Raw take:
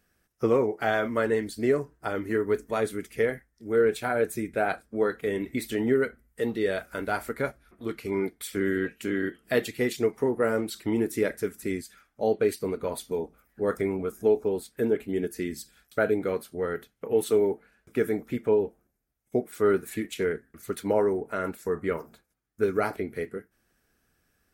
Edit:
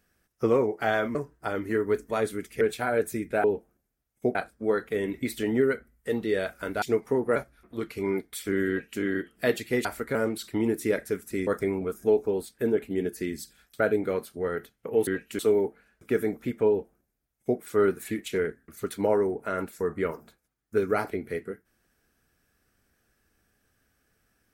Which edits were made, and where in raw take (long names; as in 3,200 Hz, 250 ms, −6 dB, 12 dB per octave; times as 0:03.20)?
0:01.15–0:01.75: remove
0:03.21–0:03.84: remove
0:07.14–0:07.44: swap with 0:09.93–0:10.47
0:08.77–0:09.09: duplicate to 0:17.25
0:11.79–0:13.65: remove
0:18.54–0:19.45: duplicate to 0:04.67